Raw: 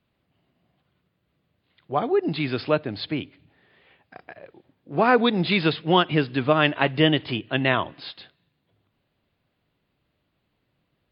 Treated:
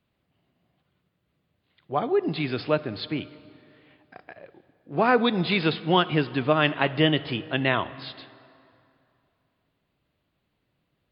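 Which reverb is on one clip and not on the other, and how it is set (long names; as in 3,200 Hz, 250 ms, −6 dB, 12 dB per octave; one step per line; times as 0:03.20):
dense smooth reverb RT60 2.7 s, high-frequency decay 0.7×, DRR 16 dB
level −2 dB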